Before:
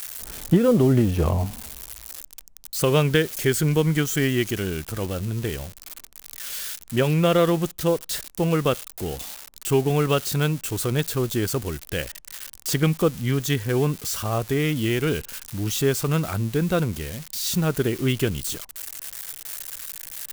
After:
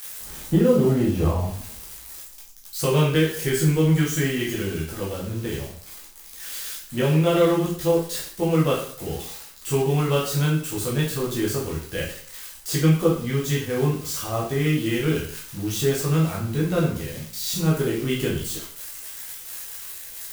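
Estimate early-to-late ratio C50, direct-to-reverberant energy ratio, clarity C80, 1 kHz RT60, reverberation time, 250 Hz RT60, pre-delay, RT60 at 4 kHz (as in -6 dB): 5.0 dB, -5.0 dB, 9.0 dB, 0.55 s, 0.55 s, 0.50 s, 5 ms, 0.50 s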